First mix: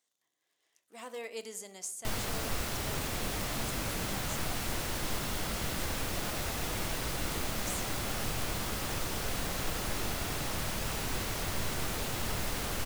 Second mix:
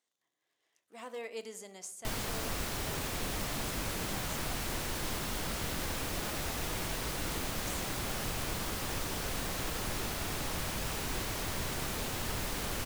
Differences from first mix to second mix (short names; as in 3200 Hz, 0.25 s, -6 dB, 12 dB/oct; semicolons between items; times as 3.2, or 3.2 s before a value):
speech: add high shelf 4600 Hz -7 dB; background: send off